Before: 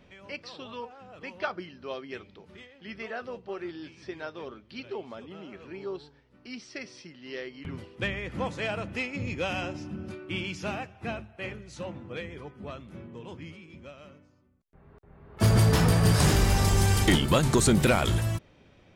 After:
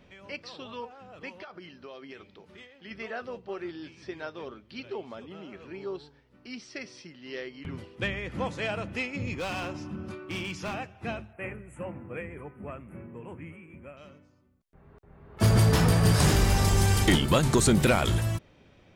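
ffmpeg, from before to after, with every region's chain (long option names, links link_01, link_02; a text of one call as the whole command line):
ffmpeg -i in.wav -filter_complex "[0:a]asettb=1/sr,asplit=3[link_01][link_02][link_03];[link_01]atrim=end=1.294[link_04];[link_02]atrim=start=1.29:end=2.91,asetpts=PTS-STARTPTS,afade=type=in:duration=0.004:curve=qsin,afade=type=out:start_time=1.616:duration=0.004:curve=qsin,lowshelf=frequency=180:gain=-5.5,acompressor=threshold=-39dB:ratio=16:attack=3.2:release=140:knee=1:detection=peak[link_05];[link_03]atrim=start=2.906[link_06];[link_04][link_05]acrossfade=duration=0.004:curve1=hsin:curve2=qsin[link_07];[link_07][link_06]acrossfade=duration=0.004:curve1=qsin:curve2=hsin,asettb=1/sr,asplit=3[link_08][link_09][link_10];[link_08]atrim=end=9.334[link_11];[link_09]atrim=start=9.33:end=10.74,asetpts=PTS-STARTPTS,afade=type=in:duration=0.004:curve=qsin,afade=type=out:start_time=1.406:duration=0.004:curve=qsin,equalizer=frequency=1100:width_type=o:width=0.44:gain=8,volume=29.5dB,asoftclip=hard,volume=-29.5dB[link_12];[link_10]atrim=start=10.736[link_13];[link_11][link_12]acrossfade=duration=0.004:curve1=hsin:curve2=qsin[link_14];[link_14][link_13]acrossfade=duration=0.004:curve1=qsin:curve2=hsin,asettb=1/sr,asplit=3[link_15][link_16][link_17];[link_15]atrim=end=11.334[link_18];[link_16]atrim=start=11.33:end=13.97,asetpts=PTS-STARTPTS,afade=type=in:duration=0.004:curve=qsin,afade=type=out:start_time=2.636:duration=0.004:curve=qsin,asuperstop=centerf=4700:order=8:qfactor=0.83,highshelf=frequency=4500:gain=4[link_19];[link_17]atrim=start=13.966[link_20];[link_18][link_19]acrossfade=duration=0.004:curve1=hsin:curve2=qsin[link_21];[link_21][link_20]acrossfade=duration=0.004:curve1=qsin:curve2=hsin" out.wav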